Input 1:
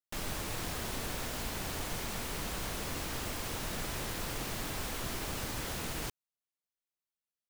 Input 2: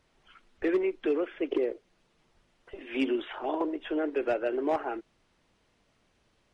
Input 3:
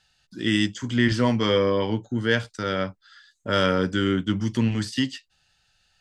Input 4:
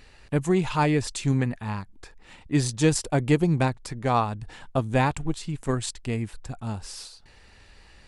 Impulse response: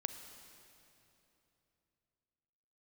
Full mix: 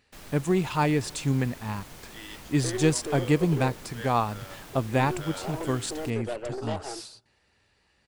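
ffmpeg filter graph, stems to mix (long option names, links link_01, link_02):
-filter_complex "[0:a]volume=-9.5dB,asplit=2[link_01][link_02];[link_02]volume=-17.5dB[link_03];[1:a]highpass=440,tiltshelf=frequency=1100:gain=8.5,aeval=exprs='0.188*(cos(1*acos(clip(val(0)/0.188,-1,1)))-cos(1*PI/2))+0.0422*(cos(3*acos(clip(val(0)/0.188,-1,1)))-cos(3*PI/2))+0.0266*(cos(5*acos(clip(val(0)/0.188,-1,1)))-cos(5*PI/2))+0.0119*(cos(8*acos(clip(val(0)/0.188,-1,1)))-cos(8*PI/2))':channel_layout=same,adelay=2000,volume=-6.5dB,asplit=2[link_04][link_05];[link_05]volume=-22dB[link_06];[2:a]highpass=480,adelay=1700,volume=-18dB[link_07];[3:a]highpass=81,volume=-2.5dB,asplit=2[link_08][link_09];[link_09]volume=-18.5dB[link_10];[4:a]atrim=start_sample=2205[link_11];[link_03][link_06][link_10]amix=inputs=3:normalize=0[link_12];[link_12][link_11]afir=irnorm=-1:irlink=0[link_13];[link_01][link_04][link_07][link_08][link_13]amix=inputs=5:normalize=0,agate=range=-11dB:threshold=-51dB:ratio=16:detection=peak"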